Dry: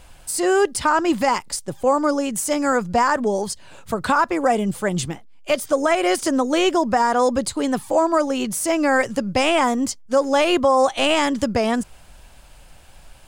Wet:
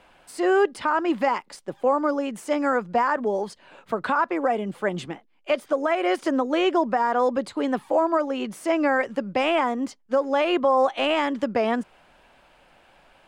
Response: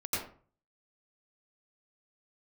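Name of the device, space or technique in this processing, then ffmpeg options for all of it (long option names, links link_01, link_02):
DJ mixer with the lows and highs turned down: -filter_complex "[0:a]acrossover=split=200 3400:gain=0.112 1 0.126[link_01][link_02][link_03];[link_01][link_02][link_03]amix=inputs=3:normalize=0,alimiter=limit=-10dB:level=0:latency=1:release=430,volume=-1.5dB"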